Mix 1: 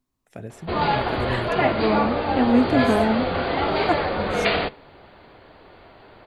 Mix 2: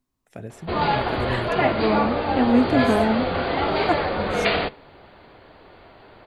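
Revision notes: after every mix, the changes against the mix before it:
none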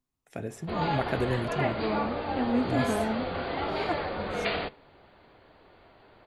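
first voice: send on; second voice -9.5 dB; background -8.5 dB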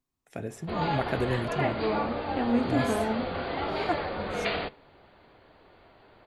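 second voice: send on

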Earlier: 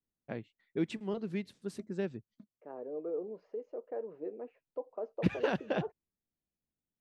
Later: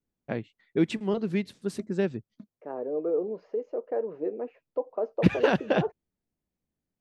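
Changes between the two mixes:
first voice +8.5 dB; second voice +9.5 dB

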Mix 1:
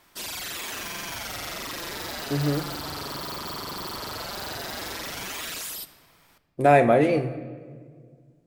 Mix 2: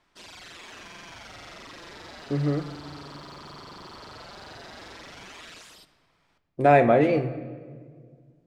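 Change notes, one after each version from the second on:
background -8.0 dB; master: add air absorption 90 m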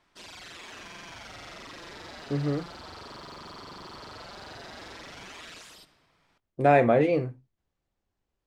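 speech: send off

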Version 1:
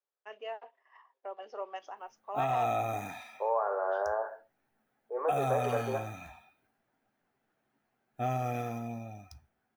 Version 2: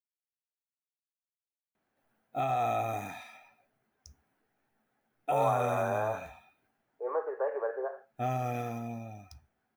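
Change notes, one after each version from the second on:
first voice: muted; second voice: entry +1.90 s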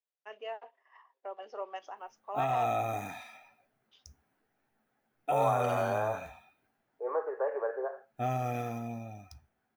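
first voice: unmuted

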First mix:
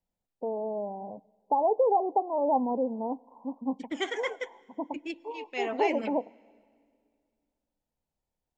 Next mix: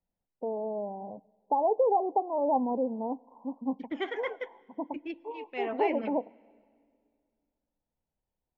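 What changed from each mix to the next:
master: add air absorption 330 m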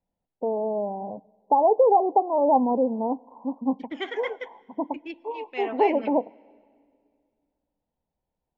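first voice +6.5 dB; master: add high shelf 2800 Hz +9.5 dB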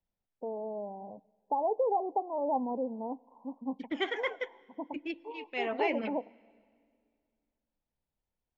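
first voice -11.0 dB

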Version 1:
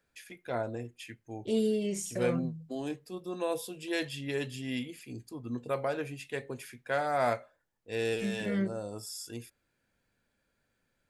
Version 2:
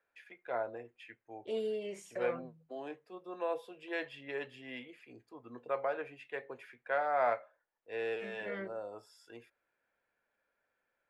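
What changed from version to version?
first voice: add high shelf 5100 Hz -9.5 dB; master: add three-band isolator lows -20 dB, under 430 Hz, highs -18 dB, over 2800 Hz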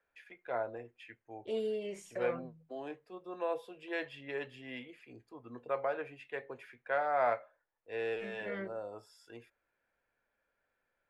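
master: add low shelf 90 Hz +11.5 dB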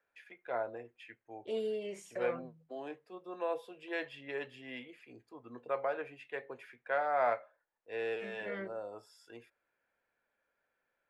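master: add low shelf 90 Hz -11.5 dB

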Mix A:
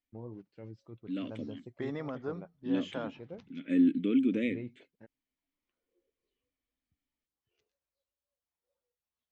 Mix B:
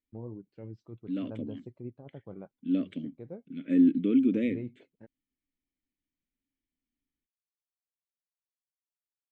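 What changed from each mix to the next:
background: muted; master: add tilt shelf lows +4 dB, about 820 Hz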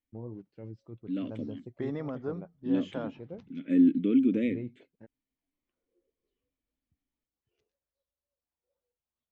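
background: unmuted

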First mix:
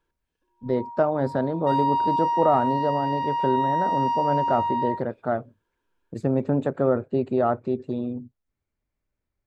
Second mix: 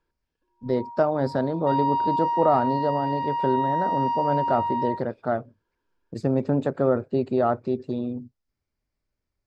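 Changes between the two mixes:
background: add air absorption 260 m; master: add bell 5000 Hz +10 dB 0.52 oct

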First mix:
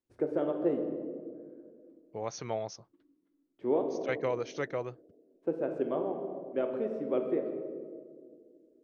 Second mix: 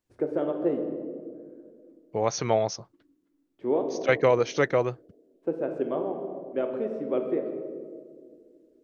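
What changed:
first voice +3.0 dB; second voice +11.0 dB

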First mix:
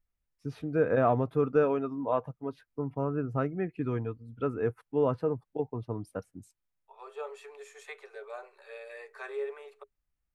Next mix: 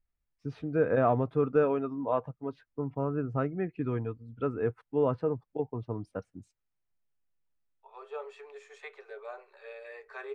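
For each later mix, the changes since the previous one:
second voice: entry +0.95 s; master: add air absorption 100 m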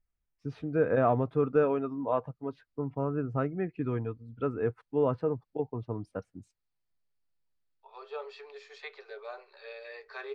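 second voice: add synth low-pass 4600 Hz, resonance Q 4.8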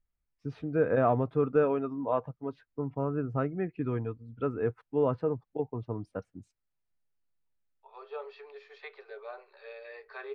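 second voice: add air absorption 170 m; master: add high shelf 6400 Hz -5 dB

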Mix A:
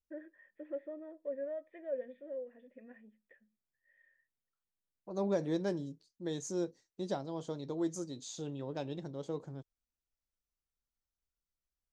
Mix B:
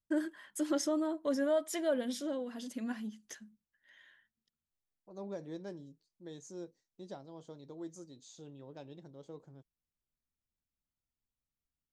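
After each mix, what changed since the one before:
first voice: remove vocal tract filter e; second voice -10.0 dB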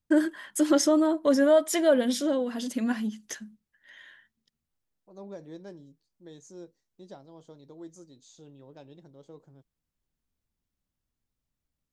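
first voice +10.5 dB

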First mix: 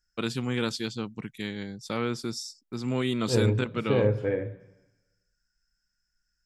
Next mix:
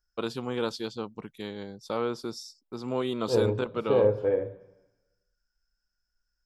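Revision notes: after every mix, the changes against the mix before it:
master: add ten-band EQ 125 Hz -8 dB, 250 Hz -4 dB, 500 Hz +4 dB, 1000 Hz +5 dB, 2000 Hz -10 dB, 8000 Hz -9 dB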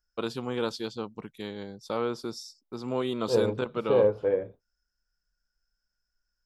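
reverb: off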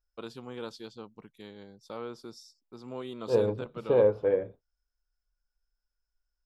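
first voice -9.5 dB

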